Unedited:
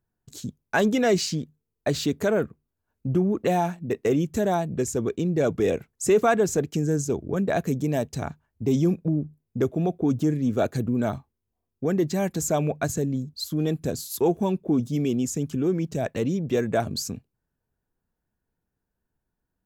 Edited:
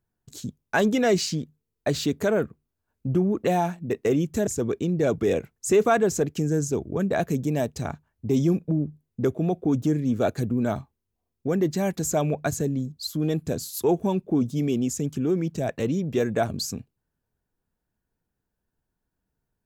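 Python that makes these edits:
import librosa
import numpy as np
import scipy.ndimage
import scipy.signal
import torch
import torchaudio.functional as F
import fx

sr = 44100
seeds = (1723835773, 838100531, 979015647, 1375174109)

y = fx.edit(x, sr, fx.cut(start_s=4.47, length_s=0.37), tone=tone)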